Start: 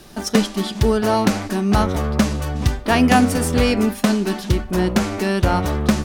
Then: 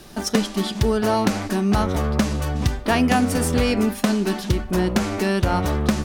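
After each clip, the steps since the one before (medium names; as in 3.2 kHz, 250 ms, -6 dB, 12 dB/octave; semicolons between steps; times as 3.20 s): compression 2.5:1, threshold -16 dBFS, peak gain reduction 5.5 dB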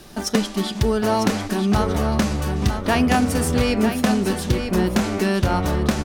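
delay 950 ms -7.5 dB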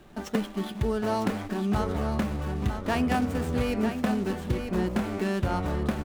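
median filter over 9 samples; trim -7.5 dB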